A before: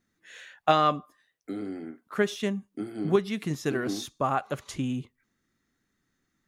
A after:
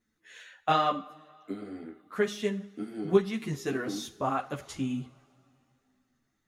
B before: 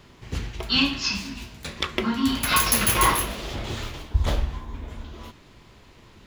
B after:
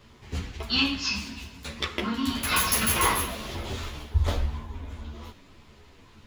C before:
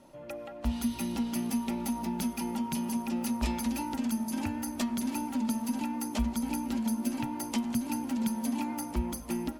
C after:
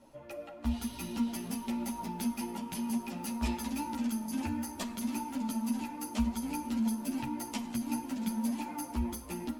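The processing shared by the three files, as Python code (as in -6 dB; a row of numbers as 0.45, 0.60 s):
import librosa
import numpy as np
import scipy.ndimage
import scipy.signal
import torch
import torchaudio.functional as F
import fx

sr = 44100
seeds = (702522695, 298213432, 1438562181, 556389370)

y = fx.rev_double_slope(x, sr, seeds[0], early_s=0.47, late_s=2.9, knee_db=-18, drr_db=10.5)
y = fx.ensemble(y, sr)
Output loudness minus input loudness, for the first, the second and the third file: -2.0, -3.0, -3.0 LU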